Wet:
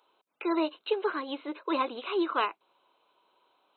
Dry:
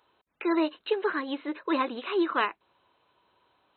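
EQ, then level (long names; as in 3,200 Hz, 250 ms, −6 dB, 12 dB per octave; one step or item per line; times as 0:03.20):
high-pass filter 330 Hz 12 dB per octave
parametric band 1,800 Hz −12 dB 0.3 octaves
0.0 dB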